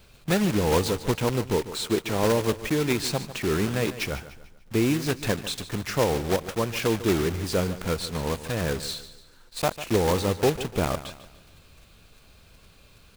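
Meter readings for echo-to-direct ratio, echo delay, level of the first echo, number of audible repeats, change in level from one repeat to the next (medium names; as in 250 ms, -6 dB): -13.0 dB, 147 ms, -14.0 dB, 3, -8.0 dB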